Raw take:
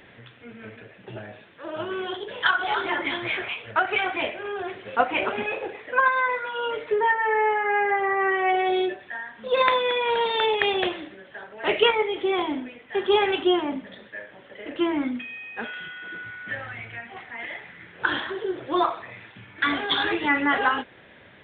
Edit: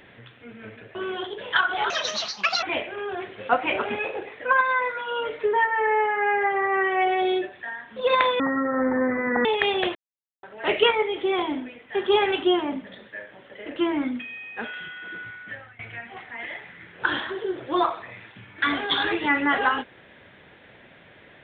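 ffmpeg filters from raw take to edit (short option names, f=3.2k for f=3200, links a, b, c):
-filter_complex "[0:a]asplit=9[a][b][c][d][e][f][g][h][i];[a]atrim=end=0.952[j];[b]atrim=start=1.848:end=2.804[k];[c]atrim=start=2.8:end=4.1,asetpts=PTS-STARTPTS,asetrate=78939,aresample=44100[l];[d]atrim=start=4.096:end=9.874[m];[e]atrim=start=9.87:end=10.45,asetpts=PTS-STARTPTS,asetrate=24255,aresample=44100,atrim=end_sample=46505,asetpts=PTS-STARTPTS[n];[f]atrim=start=10.446:end=10.95,asetpts=PTS-STARTPTS,afade=t=out:st=0.5:d=0.004:c=hsin[o];[g]atrim=start=10.95:end=11.43,asetpts=PTS-STARTPTS,volume=0[p];[h]atrim=start=11.43:end=16.79,asetpts=PTS-STARTPTS,afade=t=in:d=0.004:c=hsin,afade=t=out:st=4.81:d=0.55:silence=0.112202[q];[i]atrim=start=16.79,asetpts=PTS-STARTPTS,afade=t=in:d=0.004:c=hsin:silence=0.112202[r];[j][k]acrossfade=d=0.004:c1=hsin:c2=hsin[s];[s][l]acrossfade=d=0.004:c1=hsin:c2=hsin[t];[t][m]acrossfade=d=0.004:c1=hsin:c2=hsin[u];[u][n]acrossfade=d=0.004:c1=hsin:c2=hsin[v];[o][p][q][r]concat=n=4:v=0:a=1[w];[v][w]acrossfade=d=0.004:c1=hsin:c2=hsin"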